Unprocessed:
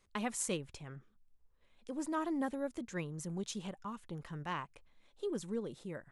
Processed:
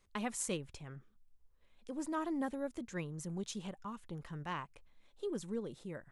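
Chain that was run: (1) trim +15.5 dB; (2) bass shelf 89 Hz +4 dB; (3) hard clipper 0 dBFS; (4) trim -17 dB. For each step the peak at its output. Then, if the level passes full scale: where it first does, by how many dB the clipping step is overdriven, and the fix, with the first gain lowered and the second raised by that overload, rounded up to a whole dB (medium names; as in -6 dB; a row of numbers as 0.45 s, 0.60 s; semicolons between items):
-4.5 dBFS, -4.5 dBFS, -4.5 dBFS, -21.5 dBFS; nothing clips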